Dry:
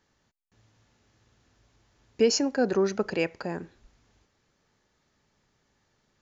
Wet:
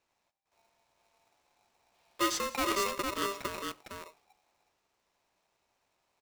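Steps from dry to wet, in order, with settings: multi-tap echo 86/176/456 ms -15.5/-19.5/-3.5 dB; time-frequency box 1.95–2.93 s, 1.3–4.2 kHz +7 dB; polarity switched at an audio rate 790 Hz; trim -8.5 dB

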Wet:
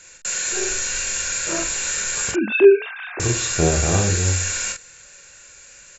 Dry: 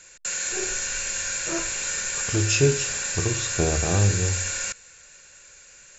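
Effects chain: 2.31–3.20 s: formants replaced by sine waves; early reflections 25 ms -8 dB, 43 ms -5.5 dB; trim +2.5 dB

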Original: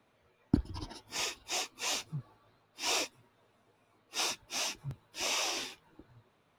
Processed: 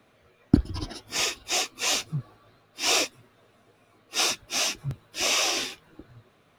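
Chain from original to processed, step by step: band-stop 910 Hz, Q 5.7; trim +9 dB

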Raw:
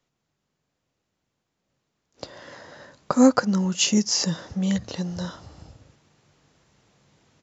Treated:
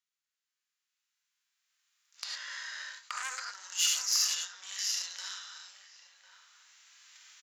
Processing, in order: 3.18–5.58 s: chunks repeated in reverse 445 ms, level -8.5 dB; recorder AGC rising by 7.9 dB/s; gated-style reverb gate 130 ms rising, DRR 5 dB; harmonic-percussive split percussive -14 dB; gate -40 dBFS, range -7 dB; echo from a far wall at 180 m, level -11 dB; valve stage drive 19 dB, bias 0.5; high-pass 1.4 kHz 24 dB/octave; treble shelf 5.7 kHz +6.5 dB

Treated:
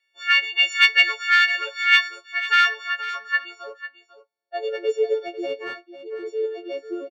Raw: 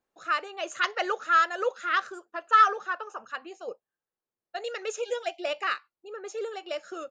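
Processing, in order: partials quantised in pitch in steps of 4 st; graphic EQ 250/500/1000/2000/4000 Hz +3/+8/-8/+8/+11 dB; saturation -10.5 dBFS, distortion -14 dB; band-pass sweep 2.3 kHz -> 340 Hz, 2.93–5.30 s; bass shelf 460 Hz -4 dB; delay 497 ms -13.5 dB; trim +7.5 dB

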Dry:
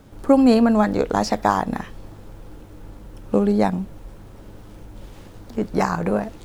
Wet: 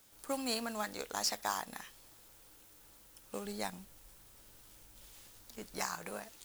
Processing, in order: pre-emphasis filter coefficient 0.97; modulation noise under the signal 16 dB; 3.45–5.83 s: bass shelf 110 Hz +8.5 dB

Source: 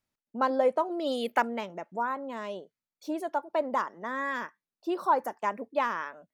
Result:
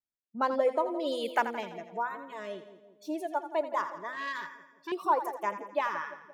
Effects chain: spectral noise reduction 17 dB; on a send: two-band feedback delay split 640 Hz, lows 174 ms, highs 84 ms, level -11 dB; 4.12–4.92 s: on the sum: transformer saturation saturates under 1.8 kHz; trim -1.5 dB

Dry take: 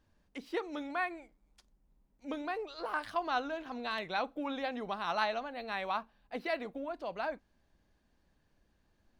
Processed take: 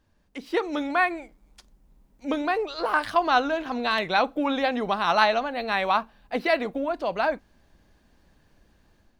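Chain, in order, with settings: level rider gain up to 8 dB; trim +4 dB

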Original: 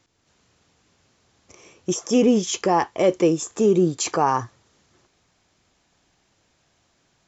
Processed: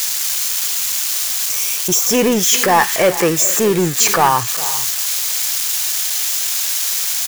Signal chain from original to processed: zero-crossing glitches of -18.5 dBFS; 2.09–4.29 s: peaking EQ 1.8 kHz +8.5 dB 0.8 oct; waveshaping leveller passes 1; peaking EQ 290 Hz -8 dB 1.3 oct; multi-tap echo 407/446 ms -17/-19.5 dB; trim +4.5 dB

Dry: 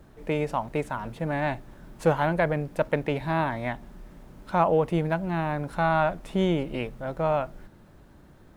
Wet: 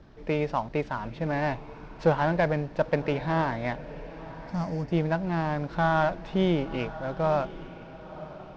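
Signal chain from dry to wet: CVSD coder 64 kbps; steep low-pass 5.5 kHz 36 dB/octave; time-frequency box 4.00–4.92 s, 320–4300 Hz -15 dB; on a send: echo that smears into a reverb 971 ms, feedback 43%, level -15.5 dB

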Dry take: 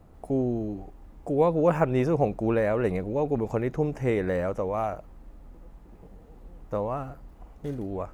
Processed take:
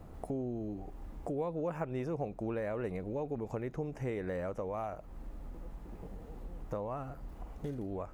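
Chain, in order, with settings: compression 3:1, threshold -42 dBFS, peak gain reduction 19 dB; trim +3 dB

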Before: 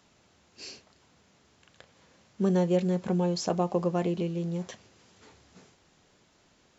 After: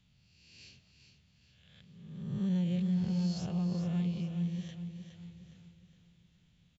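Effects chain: reverse spectral sustain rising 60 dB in 1.16 s; FFT filter 160 Hz 0 dB, 330 Hz -22 dB, 1.1 kHz -23 dB, 3.4 kHz -7 dB, 4.9 kHz -18 dB; feedback delay 414 ms, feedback 42%, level -8.5 dB

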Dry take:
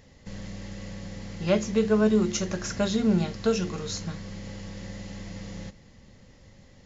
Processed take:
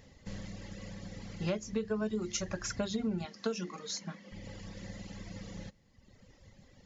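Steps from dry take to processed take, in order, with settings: reverb removal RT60 1.4 s; 3.25–4.32 s: elliptic band-pass 190–6600 Hz; compression 12:1, threshold -27 dBFS, peak gain reduction 10.5 dB; trim -2.5 dB

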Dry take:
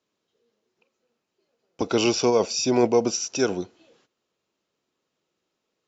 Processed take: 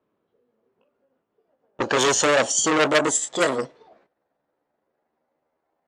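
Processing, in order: pitch bend over the whole clip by +8.5 st starting unshifted; level-controlled noise filter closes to 1.3 kHz, open at -20 dBFS; transformer saturation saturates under 3 kHz; trim +7.5 dB

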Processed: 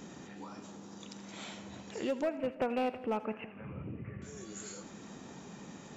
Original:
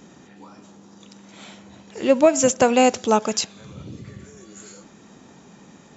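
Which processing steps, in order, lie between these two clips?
2.22–4.22 s: steep low-pass 2.8 kHz 96 dB/octave; compression 2:1, threshold -41 dBFS, peak gain reduction 17 dB; hard clipper -25.5 dBFS, distortion -17 dB; two-band feedback delay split 810 Hz, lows 166 ms, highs 82 ms, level -15.5 dB; trim -1 dB

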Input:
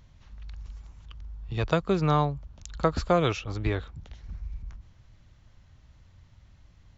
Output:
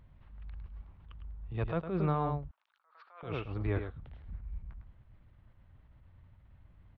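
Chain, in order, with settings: Gaussian low-pass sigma 3.2 samples; delay 105 ms -8.5 dB; peak limiter -18 dBFS, peak gain reduction 7.5 dB; 2.51–3.23 s: ladder high-pass 830 Hz, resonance 25%; attacks held to a fixed rise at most 110 dB/s; trim -3 dB

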